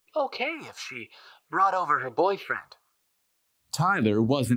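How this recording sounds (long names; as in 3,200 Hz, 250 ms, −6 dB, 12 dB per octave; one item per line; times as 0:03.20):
phaser sweep stages 4, 1 Hz, lowest notch 360–2,100 Hz
a quantiser's noise floor 12 bits, dither triangular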